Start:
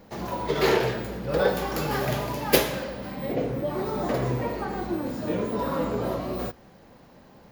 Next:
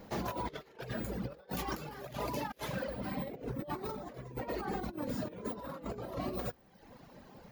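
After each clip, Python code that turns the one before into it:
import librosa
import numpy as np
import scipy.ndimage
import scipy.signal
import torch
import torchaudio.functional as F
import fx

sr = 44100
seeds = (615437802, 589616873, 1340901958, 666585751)

y = fx.dereverb_blind(x, sr, rt60_s=0.85)
y = fx.over_compress(y, sr, threshold_db=-34.0, ratio=-0.5)
y = y * librosa.db_to_amplitude(-5.5)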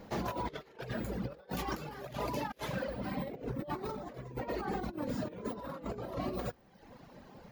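y = fx.high_shelf(x, sr, hz=8300.0, db=-6.0)
y = y * librosa.db_to_amplitude(1.0)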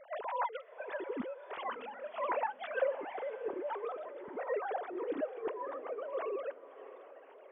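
y = fx.sine_speech(x, sr)
y = fx.echo_diffused(y, sr, ms=603, feedback_pct=48, wet_db=-15.0)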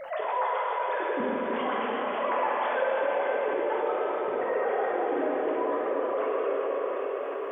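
y = fx.rev_plate(x, sr, seeds[0], rt60_s=5.0, hf_ratio=0.95, predelay_ms=0, drr_db=-6.0)
y = fx.env_flatten(y, sr, amount_pct=50)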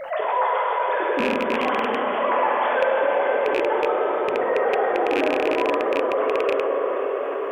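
y = fx.rattle_buzz(x, sr, strikes_db=-37.0, level_db=-20.0)
y = y * librosa.db_to_amplitude(6.5)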